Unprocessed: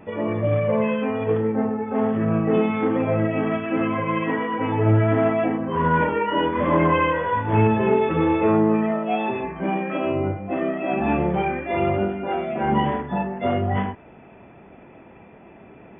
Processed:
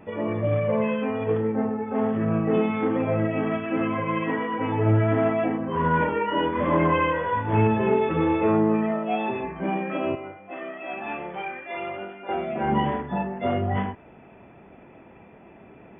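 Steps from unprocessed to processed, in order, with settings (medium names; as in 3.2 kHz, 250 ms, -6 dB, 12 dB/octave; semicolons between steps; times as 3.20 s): 10.15–12.29 s: high-pass 1.3 kHz 6 dB/octave; trim -2.5 dB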